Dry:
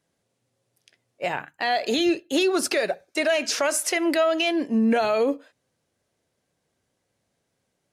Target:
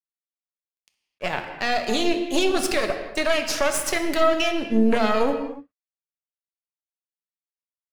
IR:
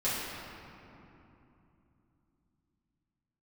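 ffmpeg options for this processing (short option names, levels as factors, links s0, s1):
-filter_complex "[0:a]aeval=exprs='0.237*(cos(1*acos(clip(val(0)/0.237,-1,1)))-cos(1*PI/2))+0.106*(cos(2*acos(clip(val(0)/0.237,-1,1)))-cos(2*PI/2))':c=same,aeval=exprs='sgn(val(0))*max(abs(val(0))-0.00531,0)':c=same,asplit=2[s0][s1];[1:a]atrim=start_sample=2205,afade=t=out:st=0.35:d=0.01,atrim=end_sample=15876[s2];[s1][s2]afir=irnorm=-1:irlink=0,volume=0.282[s3];[s0][s3]amix=inputs=2:normalize=0,volume=0.708"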